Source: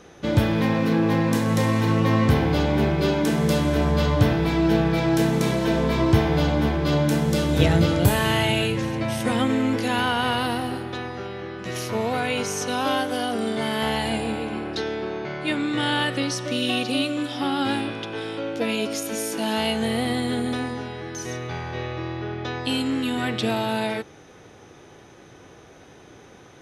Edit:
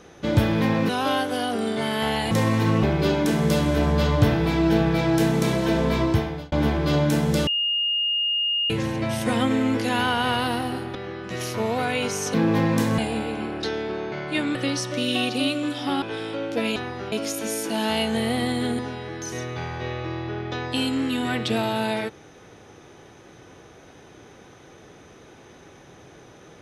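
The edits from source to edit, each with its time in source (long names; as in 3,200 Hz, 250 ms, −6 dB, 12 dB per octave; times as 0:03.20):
0:00.89–0:01.53: swap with 0:12.69–0:14.11
0:02.05–0:02.82: remove
0:05.95–0:06.51: fade out
0:07.46–0:08.69: beep over 2,840 Hz −20.5 dBFS
0:10.94–0:11.30: move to 0:18.80
0:15.68–0:16.09: remove
0:17.56–0:18.06: remove
0:20.47–0:20.72: remove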